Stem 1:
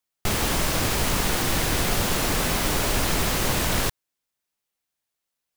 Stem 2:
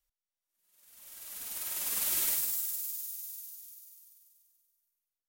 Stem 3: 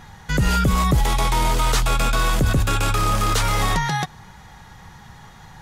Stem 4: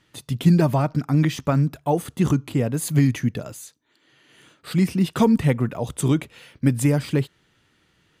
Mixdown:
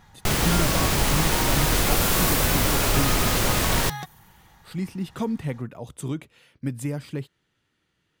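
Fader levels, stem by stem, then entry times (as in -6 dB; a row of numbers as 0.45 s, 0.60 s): +1.0 dB, +1.5 dB, -11.0 dB, -10.0 dB; 0.00 s, 0.00 s, 0.00 s, 0.00 s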